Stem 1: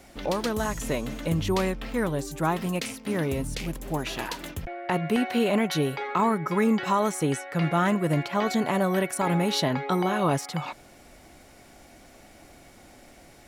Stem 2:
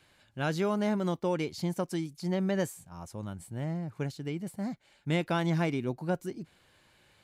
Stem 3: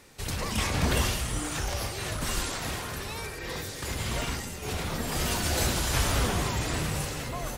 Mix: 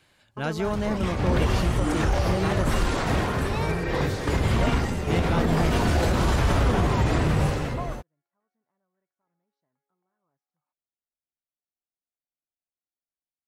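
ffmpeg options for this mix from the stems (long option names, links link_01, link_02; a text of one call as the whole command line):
ffmpeg -i stem1.wav -i stem2.wav -i stem3.wav -filter_complex "[0:a]lowpass=frequency=5700:width_type=q:width=2.2,highshelf=frequency=2200:width_type=q:width=1.5:gain=-12.5,volume=-9dB[link_01];[1:a]volume=1.5dB,asplit=2[link_02][link_03];[2:a]lowpass=frequency=1100:poles=1,dynaudnorm=framelen=700:gausssize=3:maxgain=12dB,adelay=450,volume=0dB[link_04];[link_03]apad=whole_len=594162[link_05];[link_01][link_05]sidechaingate=range=-48dB:threshold=-49dB:ratio=16:detection=peak[link_06];[link_06][link_02][link_04]amix=inputs=3:normalize=0,alimiter=limit=-13dB:level=0:latency=1:release=70" out.wav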